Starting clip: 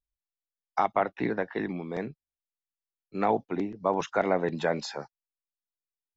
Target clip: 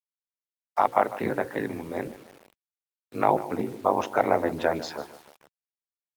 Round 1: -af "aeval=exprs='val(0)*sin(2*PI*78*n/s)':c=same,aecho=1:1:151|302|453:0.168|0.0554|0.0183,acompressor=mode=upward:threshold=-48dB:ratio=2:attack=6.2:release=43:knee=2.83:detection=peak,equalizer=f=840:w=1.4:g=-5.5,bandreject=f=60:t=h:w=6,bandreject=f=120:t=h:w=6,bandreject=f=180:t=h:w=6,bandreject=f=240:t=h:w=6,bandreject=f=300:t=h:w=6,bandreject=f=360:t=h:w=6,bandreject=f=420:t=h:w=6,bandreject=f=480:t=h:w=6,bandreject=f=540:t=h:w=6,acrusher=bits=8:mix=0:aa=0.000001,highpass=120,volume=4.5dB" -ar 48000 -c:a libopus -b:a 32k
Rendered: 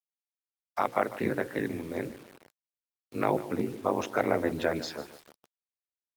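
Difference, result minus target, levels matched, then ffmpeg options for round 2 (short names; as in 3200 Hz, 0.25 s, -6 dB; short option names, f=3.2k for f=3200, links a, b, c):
1000 Hz band -3.0 dB
-af "aeval=exprs='val(0)*sin(2*PI*78*n/s)':c=same,aecho=1:1:151|302|453:0.168|0.0554|0.0183,acompressor=mode=upward:threshold=-48dB:ratio=2:attack=6.2:release=43:knee=2.83:detection=peak,equalizer=f=840:w=1.4:g=3.5,bandreject=f=60:t=h:w=6,bandreject=f=120:t=h:w=6,bandreject=f=180:t=h:w=6,bandreject=f=240:t=h:w=6,bandreject=f=300:t=h:w=6,bandreject=f=360:t=h:w=6,bandreject=f=420:t=h:w=6,bandreject=f=480:t=h:w=6,bandreject=f=540:t=h:w=6,acrusher=bits=8:mix=0:aa=0.000001,highpass=120,volume=4.5dB" -ar 48000 -c:a libopus -b:a 32k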